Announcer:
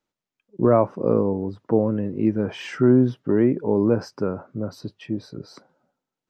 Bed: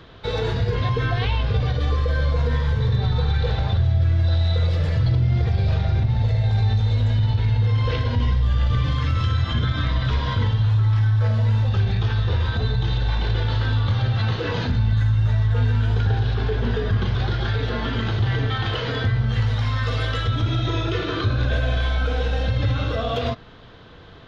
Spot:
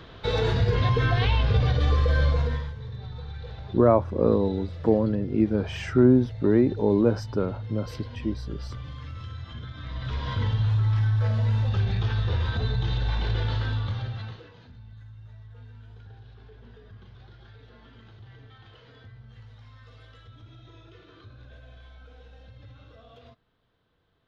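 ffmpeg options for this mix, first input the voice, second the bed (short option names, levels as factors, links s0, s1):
-filter_complex "[0:a]adelay=3150,volume=0.841[s0];[1:a]volume=3.98,afade=t=out:st=2.24:d=0.49:silence=0.149624,afade=t=in:st=9.8:d=0.73:silence=0.237137,afade=t=out:st=13.46:d=1.04:silence=0.0749894[s1];[s0][s1]amix=inputs=2:normalize=0"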